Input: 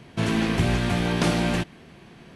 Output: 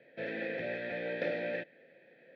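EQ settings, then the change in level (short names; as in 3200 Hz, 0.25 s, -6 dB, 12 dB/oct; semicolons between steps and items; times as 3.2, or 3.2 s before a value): vowel filter e; speaker cabinet 150–3900 Hz, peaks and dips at 210 Hz -4 dB, 390 Hz -7 dB, 720 Hz -3 dB, 1100 Hz -8 dB, 3000 Hz -7 dB; notch 2800 Hz, Q 6.9; +4.5 dB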